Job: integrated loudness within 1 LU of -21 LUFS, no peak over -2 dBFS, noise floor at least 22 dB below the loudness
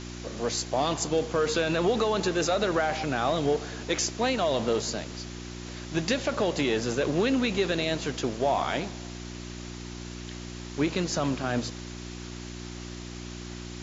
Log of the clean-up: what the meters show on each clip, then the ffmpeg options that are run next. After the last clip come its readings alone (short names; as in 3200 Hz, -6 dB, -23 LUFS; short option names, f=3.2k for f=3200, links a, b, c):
hum 60 Hz; harmonics up to 360 Hz; hum level -38 dBFS; noise floor -40 dBFS; noise floor target -50 dBFS; loudness -27.5 LUFS; peak -14.5 dBFS; loudness target -21.0 LUFS
-> -af "bandreject=f=60:t=h:w=4,bandreject=f=120:t=h:w=4,bandreject=f=180:t=h:w=4,bandreject=f=240:t=h:w=4,bandreject=f=300:t=h:w=4,bandreject=f=360:t=h:w=4"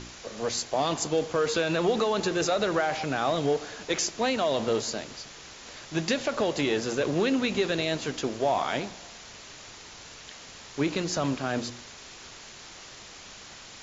hum none; noise floor -46 dBFS; noise floor target -50 dBFS
-> -af "afftdn=nr=6:nf=-46"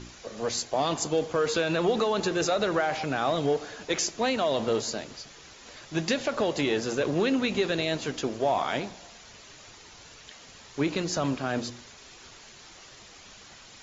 noise floor -50 dBFS; loudness -28.0 LUFS; peak -15.0 dBFS; loudness target -21.0 LUFS
-> -af "volume=7dB"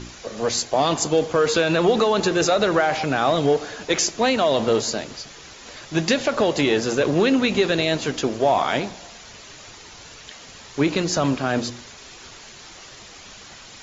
loudness -21.0 LUFS; peak -8.0 dBFS; noise floor -43 dBFS